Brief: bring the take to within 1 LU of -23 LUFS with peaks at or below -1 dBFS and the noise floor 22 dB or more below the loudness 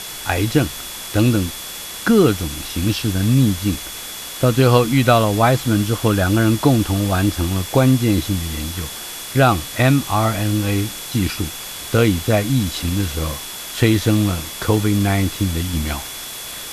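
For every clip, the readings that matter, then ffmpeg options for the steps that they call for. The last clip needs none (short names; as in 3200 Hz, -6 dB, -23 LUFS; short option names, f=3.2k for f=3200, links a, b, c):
steady tone 3400 Hz; tone level -36 dBFS; noise floor -31 dBFS; noise floor target -41 dBFS; loudness -18.5 LUFS; peak -1.0 dBFS; loudness target -23.0 LUFS
-> -af "bandreject=f=3.4k:w=30"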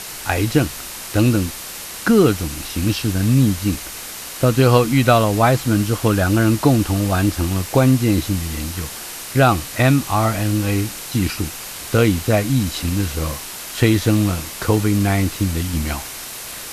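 steady tone none; noise floor -32 dBFS; noise floor target -41 dBFS
-> -af "afftdn=nr=9:nf=-32"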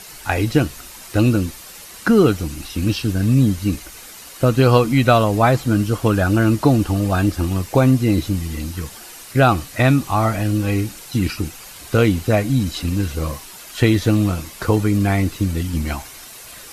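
noise floor -39 dBFS; noise floor target -41 dBFS
-> -af "afftdn=nr=6:nf=-39"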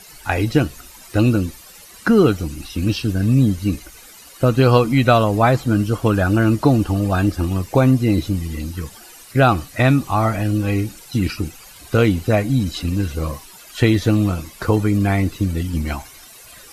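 noise floor -43 dBFS; loudness -18.5 LUFS; peak -1.5 dBFS; loudness target -23.0 LUFS
-> -af "volume=-4.5dB"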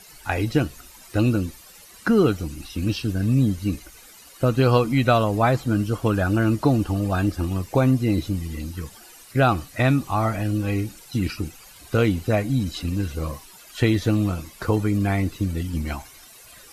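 loudness -23.0 LUFS; peak -6.0 dBFS; noise floor -47 dBFS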